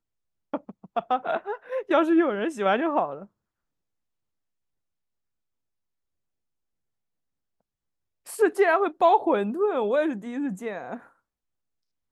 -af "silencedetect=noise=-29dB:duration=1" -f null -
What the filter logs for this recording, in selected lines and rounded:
silence_start: 3.22
silence_end: 8.30 | silence_duration: 5.07
silence_start: 10.96
silence_end: 12.12 | silence_duration: 1.16